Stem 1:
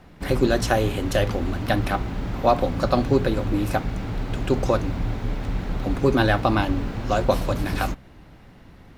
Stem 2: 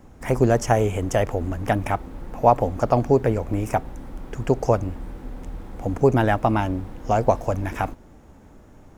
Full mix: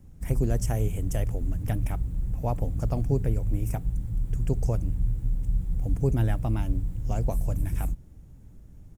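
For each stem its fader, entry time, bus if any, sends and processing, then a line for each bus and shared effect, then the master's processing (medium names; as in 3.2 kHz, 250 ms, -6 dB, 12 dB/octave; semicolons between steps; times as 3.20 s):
-3.5 dB, 0.00 s, no send, Chebyshev band-stop 170–7800 Hz, order 4; comb 1.5 ms, depth 51%
-7.5 dB, 0.00 s, no send, bass shelf 140 Hz +7 dB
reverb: none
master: peaking EQ 960 Hz -11.5 dB 2.5 oct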